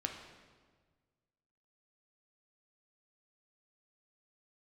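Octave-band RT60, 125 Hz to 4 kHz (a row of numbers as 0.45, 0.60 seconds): 2.0, 1.7, 1.6, 1.4, 1.3, 1.2 seconds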